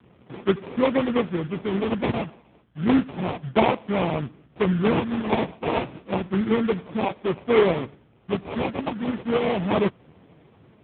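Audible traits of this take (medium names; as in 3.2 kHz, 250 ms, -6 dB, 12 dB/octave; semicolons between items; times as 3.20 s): a buzz of ramps at a fixed pitch in blocks of 8 samples; phasing stages 2, 0.32 Hz, lowest notch 420–2200 Hz; aliases and images of a low sample rate 1.6 kHz, jitter 20%; AMR-NB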